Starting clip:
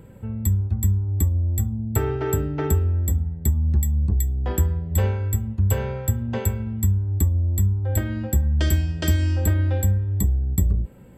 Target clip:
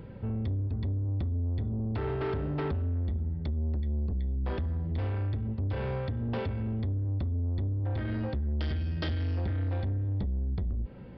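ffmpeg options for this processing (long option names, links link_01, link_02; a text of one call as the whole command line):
ffmpeg -i in.wav -af "acompressor=threshold=-23dB:ratio=4,aresample=11025,asoftclip=type=tanh:threshold=-28.5dB,aresample=44100,volume=1dB" out.wav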